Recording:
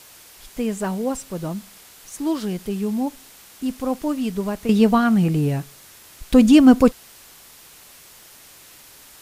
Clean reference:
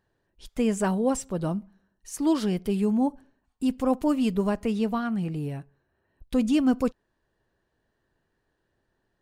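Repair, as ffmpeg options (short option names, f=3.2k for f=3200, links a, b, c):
-af "adeclick=t=4,afwtdn=0.0056,asetnsamples=n=441:p=0,asendcmd='4.69 volume volume -11dB',volume=0dB"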